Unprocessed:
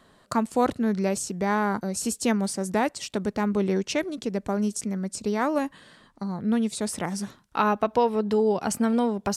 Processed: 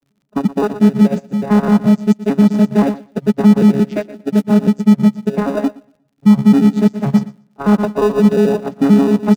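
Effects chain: arpeggiated vocoder bare fifth, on C#3, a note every 88 ms; 3.89–4.42 modulation noise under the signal 22 dB; low-pass opened by the level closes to 330 Hz, open at -22.5 dBFS; on a send: feedback echo 0.118 s, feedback 35%, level -9 dB; on the sum: crackle 58/s -43 dBFS; in parallel at -11 dB: sample-and-hold 41×; on the sum: high shelf 5800 Hz -6.5 dB; maximiser +19.5 dB; upward expander 2.5:1, over -20 dBFS

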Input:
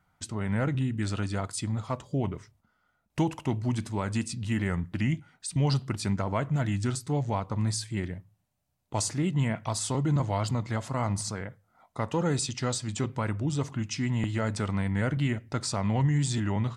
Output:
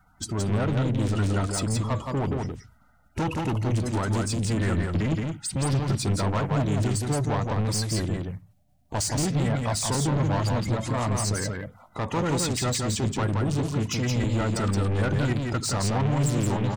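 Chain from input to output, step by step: bin magnitudes rounded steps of 30 dB; low shelf 90 Hz +11 dB; soft clip -30 dBFS, distortion -7 dB; on a send: echo 0.172 s -3.5 dB; on the sum: gain +7 dB

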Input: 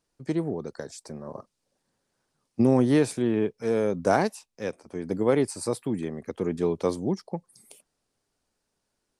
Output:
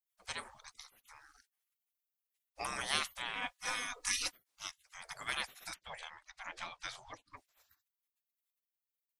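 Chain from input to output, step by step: spectral gate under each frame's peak -30 dB weak; 3.35–4.33 comb 4.1 ms, depth 76%; 5.74–7.37 LPF 4900 Hz 12 dB/oct; gain +7 dB

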